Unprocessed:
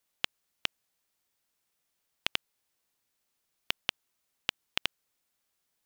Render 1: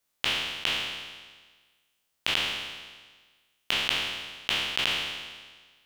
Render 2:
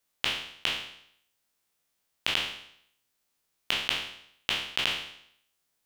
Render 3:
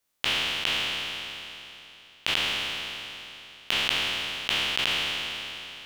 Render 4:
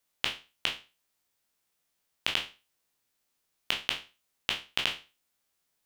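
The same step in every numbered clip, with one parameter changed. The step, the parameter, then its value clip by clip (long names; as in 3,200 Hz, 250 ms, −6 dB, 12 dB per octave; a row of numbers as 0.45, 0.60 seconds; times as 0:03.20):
peak hold with a decay on every bin, RT60: 1.47, 0.68, 3.14, 0.31 seconds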